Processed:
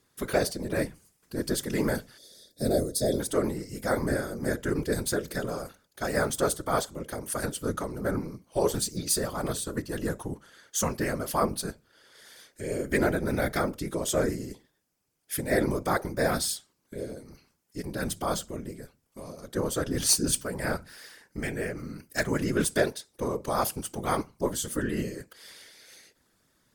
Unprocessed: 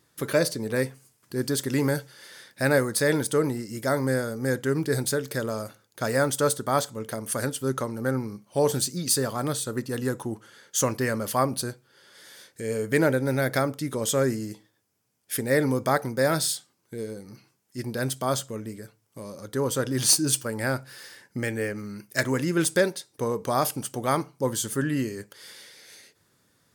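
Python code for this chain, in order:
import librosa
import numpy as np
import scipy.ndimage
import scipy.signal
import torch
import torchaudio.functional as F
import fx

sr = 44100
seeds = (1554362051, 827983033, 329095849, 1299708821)

y = fx.spec_box(x, sr, start_s=2.18, length_s=1.02, low_hz=610.0, high_hz=3300.0, gain_db=-19)
y = fx.whisperise(y, sr, seeds[0])
y = y * 10.0 ** (-3.0 / 20.0)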